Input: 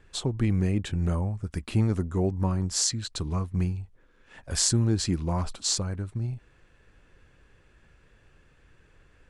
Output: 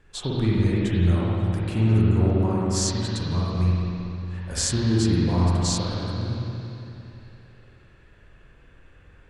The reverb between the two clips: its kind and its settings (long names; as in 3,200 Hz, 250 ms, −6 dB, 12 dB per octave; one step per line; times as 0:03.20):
spring reverb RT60 3 s, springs 45/57 ms, chirp 45 ms, DRR −6 dB
level −1.5 dB